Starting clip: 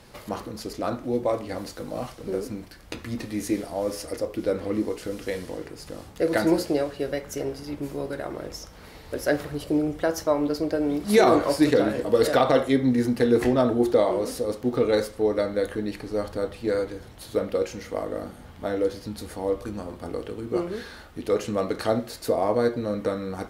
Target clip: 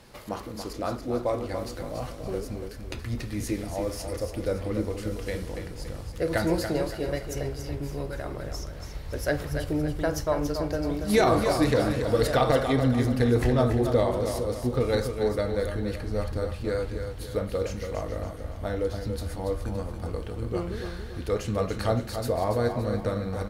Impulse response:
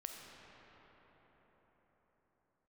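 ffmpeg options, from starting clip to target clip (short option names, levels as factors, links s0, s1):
-filter_complex "[0:a]asubboost=boost=6:cutoff=110,asplit=2[s0][s1];[s1]aecho=0:1:283|566|849|1132|1415:0.422|0.177|0.0744|0.0312|0.0131[s2];[s0][s2]amix=inputs=2:normalize=0,volume=0.794"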